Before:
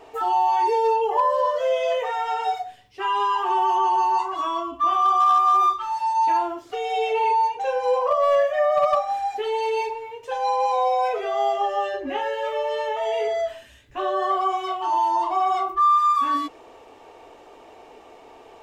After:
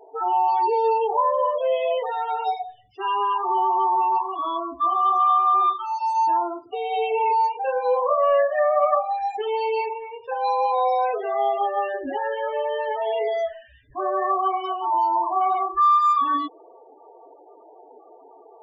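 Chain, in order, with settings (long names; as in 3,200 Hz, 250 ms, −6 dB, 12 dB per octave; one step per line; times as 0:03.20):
parametric band 1,700 Hz −4 dB 0.59 octaves, from 0:07.39 +2 dB
spectral peaks only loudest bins 16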